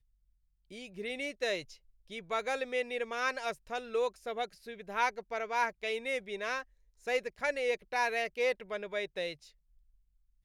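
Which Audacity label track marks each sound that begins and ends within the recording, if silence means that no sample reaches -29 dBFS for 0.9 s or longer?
1.060000	9.290000	sound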